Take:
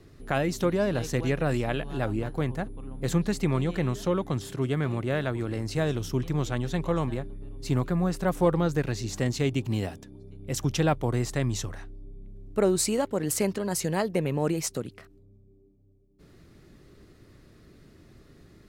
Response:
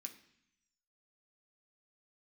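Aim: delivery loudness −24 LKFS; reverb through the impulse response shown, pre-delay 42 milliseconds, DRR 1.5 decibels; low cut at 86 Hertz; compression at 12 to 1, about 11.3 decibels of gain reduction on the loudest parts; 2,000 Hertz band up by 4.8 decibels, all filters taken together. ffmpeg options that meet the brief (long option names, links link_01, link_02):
-filter_complex "[0:a]highpass=86,equalizer=frequency=2000:width_type=o:gain=6,acompressor=threshold=-29dB:ratio=12,asplit=2[link_01][link_02];[1:a]atrim=start_sample=2205,adelay=42[link_03];[link_02][link_03]afir=irnorm=-1:irlink=0,volume=4.5dB[link_04];[link_01][link_04]amix=inputs=2:normalize=0,volume=8.5dB"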